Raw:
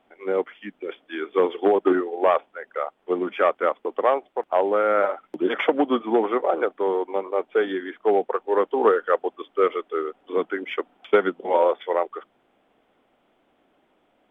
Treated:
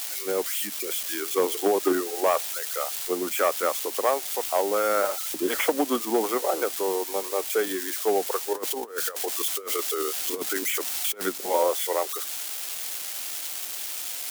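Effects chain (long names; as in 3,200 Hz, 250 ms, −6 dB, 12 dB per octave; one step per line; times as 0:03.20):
spike at every zero crossing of −20.5 dBFS
high-shelf EQ 3,300 Hz +6.5 dB
0:08.53–0:11.26: compressor whose output falls as the input rises −24 dBFS, ratio −0.5
level −4 dB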